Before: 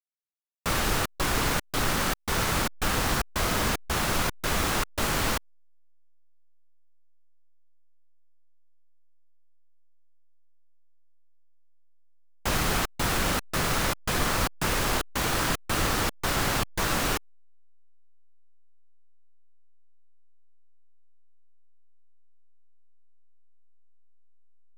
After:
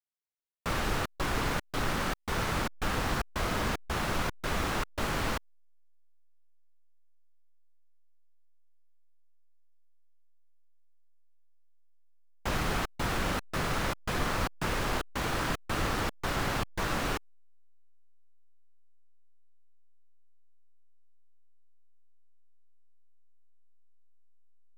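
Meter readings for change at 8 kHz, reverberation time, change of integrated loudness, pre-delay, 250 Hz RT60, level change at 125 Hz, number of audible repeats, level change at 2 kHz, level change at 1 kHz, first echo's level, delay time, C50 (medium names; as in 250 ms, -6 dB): -10.5 dB, no reverb, -5.5 dB, no reverb, no reverb, -3.5 dB, no echo, -4.5 dB, -4.0 dB, no echo, no echo, no reverb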